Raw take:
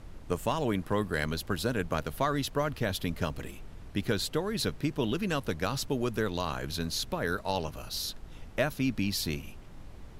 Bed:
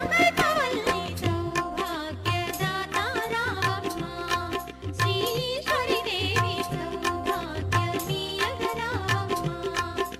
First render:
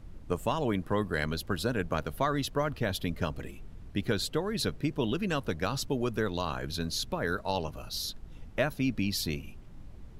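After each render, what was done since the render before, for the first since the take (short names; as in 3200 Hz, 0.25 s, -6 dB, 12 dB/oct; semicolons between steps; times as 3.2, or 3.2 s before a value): denoiser 7 dB, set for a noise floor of -47 dBFS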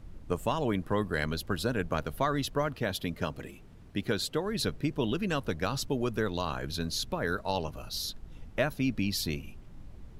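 2.67–4.46 low shelf 67 Hz -12 dB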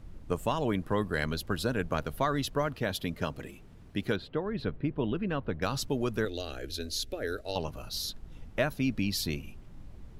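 4.16–5.62 air absorption 430 m; 6.25–7.56 fixed phaser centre 410 Hz, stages 4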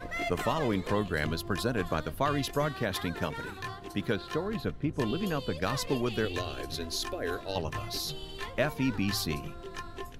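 add bed -13.5 dB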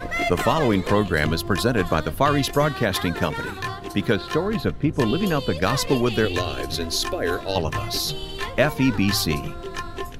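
gain +9.5 dB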